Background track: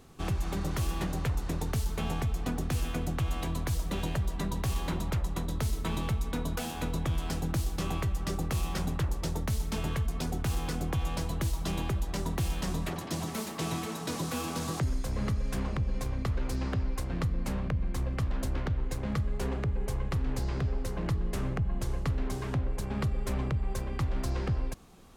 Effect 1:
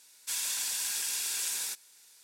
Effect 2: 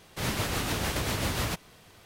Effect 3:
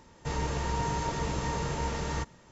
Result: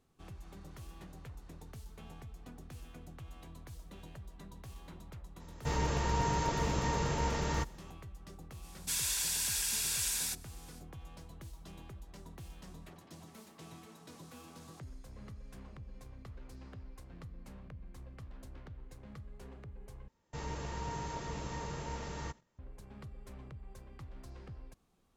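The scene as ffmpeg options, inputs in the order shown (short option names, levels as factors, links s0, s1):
-filter_complex "[3:a]asplit=2[s0][s1];[0:a]volume=0.119[s2];[1:a]asoftclip=type=tanh:threshold=0.0841[s3];[s1]agate=range=0.251:threshold=0.00224:ratio=16:release=100:detection=peak[s4];[s2]asplit=2[s5][s6];[s5]atrim=end=20.084[s7];[s4]atrim=end=2.51,asetpts=PTS-STARTPTS,volume=0.355[s8];[s6]atrim=start=22.586[s9];[s0]atrim=end=2.51,asetpts=PTS-STARTPTS,volume=0.891,afade=t=in:d=0.004:c=hsin,afade=t=out:st=2.506:d=0.004:c=hsin,adelay=5400[s10];[s3]atrim=end=2.23,asetpts=PTS-STARTPTS,volume=0.944,afade=t=in:d=0.05,afade=t=out:st=2.18:d=0.05,adelay=8600[s11];[s7][s8]acrossfade=d=0.004:c1=hsin:c2=hsin[s12];[s12][s9]acrossfade=d=0.004:c1=hsin:c2=hsin[s13];[s13][s10][s11]amix=inputs=3:normalize=0"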